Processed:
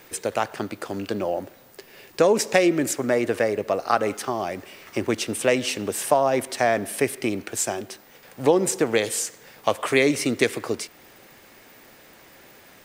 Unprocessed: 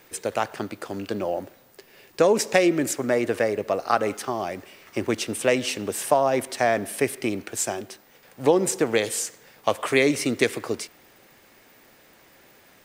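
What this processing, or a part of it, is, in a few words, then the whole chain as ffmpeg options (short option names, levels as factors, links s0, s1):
parallel compression: -filter_complex "[0:a]asplit=2[s0][s1];[s1]acompressor=threshold=0.0126:ratio=6,volume=0.668[s2];[s0][s2]amix=inputs=2:normalize=0"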